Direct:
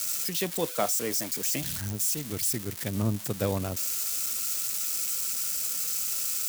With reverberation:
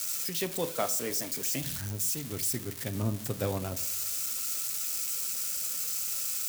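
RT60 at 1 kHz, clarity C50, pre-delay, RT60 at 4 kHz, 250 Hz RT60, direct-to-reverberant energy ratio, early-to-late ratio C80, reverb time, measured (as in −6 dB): 0.70 s, 15.5 dB, 8 ms, 0.40 s, 0.80 s, 8.5 dB, 19.0 dB, 0.75 s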